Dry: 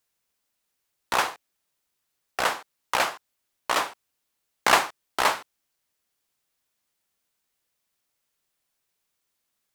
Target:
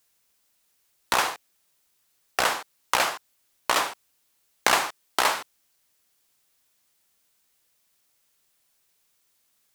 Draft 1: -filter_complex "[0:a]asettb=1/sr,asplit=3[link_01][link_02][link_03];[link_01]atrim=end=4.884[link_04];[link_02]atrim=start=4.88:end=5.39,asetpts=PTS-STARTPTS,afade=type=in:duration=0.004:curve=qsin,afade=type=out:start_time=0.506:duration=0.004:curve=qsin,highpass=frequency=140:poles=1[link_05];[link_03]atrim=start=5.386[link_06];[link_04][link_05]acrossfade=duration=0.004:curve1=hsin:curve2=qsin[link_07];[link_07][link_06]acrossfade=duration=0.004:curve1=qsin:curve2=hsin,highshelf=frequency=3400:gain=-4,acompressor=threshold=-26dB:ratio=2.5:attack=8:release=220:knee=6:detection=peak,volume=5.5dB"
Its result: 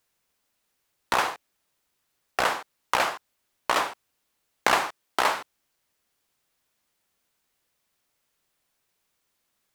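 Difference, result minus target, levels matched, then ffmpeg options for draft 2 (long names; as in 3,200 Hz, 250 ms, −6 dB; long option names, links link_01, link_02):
8,000 Hz band −5.0 dB
-filter_complex "[0:a]asettb=1/sr,asplit=3[link_01][link_02][link_03];[link_01]atrim=end=4.884[link_04];[link_02]atrim=start=4.88:end=5.39,asetpts=PTS-STARTPTS,afade=type=in:duration=0.004:curve=qsin,afade=type=out:start_time=0.506:duration=0.004:curve=qsin,highpass=frequency=140:poles=1[link_05];[link_03]atrim=start=5.386[link_06];[link_04][link_05]acrossfade=duration=0.004:curve1=hsin:curve2=qsin[link_07];[link_07][link_06]acrossfade=duration=0.004:curve1=qsin:curve2=hsin,highshelf=frequency=3400:gain=4.5,acompressor=threshold=-26dB:ratio=2.5:attack=8:release=220:knee=6:detection=peak,volume=5.5dB"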